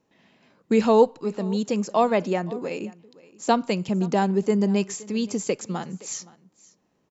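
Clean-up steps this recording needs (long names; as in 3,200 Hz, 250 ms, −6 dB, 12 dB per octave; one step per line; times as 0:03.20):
echo removal 520 ms −21.5 dB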